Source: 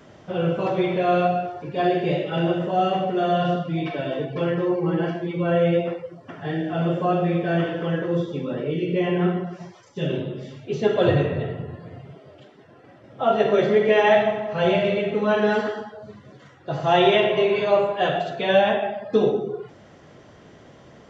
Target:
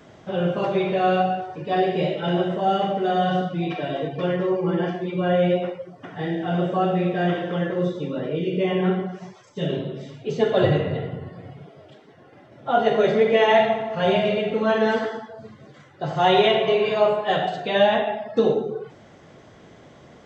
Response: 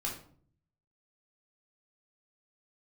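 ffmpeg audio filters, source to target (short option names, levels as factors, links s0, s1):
-af "asetrate=45938,aresample=44100"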